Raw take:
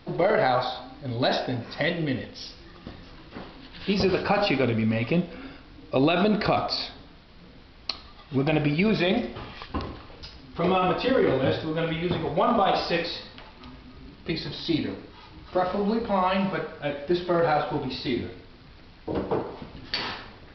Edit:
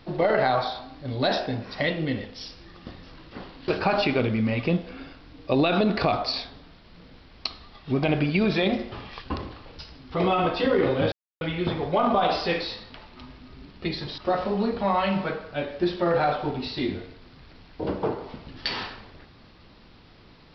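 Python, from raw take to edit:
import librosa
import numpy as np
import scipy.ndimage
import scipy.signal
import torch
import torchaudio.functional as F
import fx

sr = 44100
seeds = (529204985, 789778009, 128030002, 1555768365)

y = fx.edit(x, sr, fx.cut(start_s=3.68, length_s=0.44),
    fx.silence(start_s=11.56, length_s=0.29),
    fx.cut(start_s=14.62, length_s=0.84), tone=tone)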